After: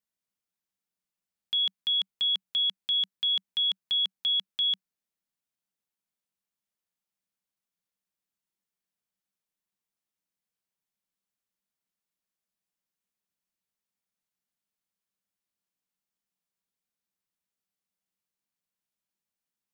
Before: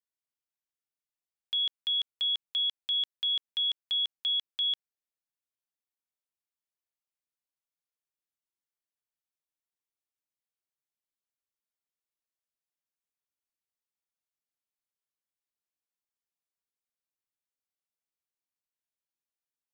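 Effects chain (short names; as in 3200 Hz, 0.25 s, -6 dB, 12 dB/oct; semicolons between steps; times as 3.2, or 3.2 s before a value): bell 190 Hz +13 dB 0.4 oct; gain +2.5 dB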